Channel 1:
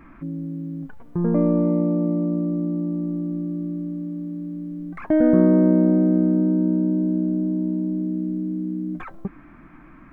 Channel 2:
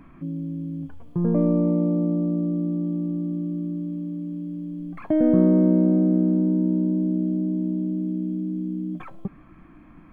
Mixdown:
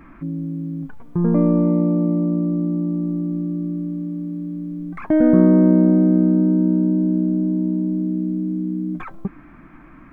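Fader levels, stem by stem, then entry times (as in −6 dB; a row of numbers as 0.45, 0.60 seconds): +2.0, −9.0 decibels; 0.00, 0.00 seconds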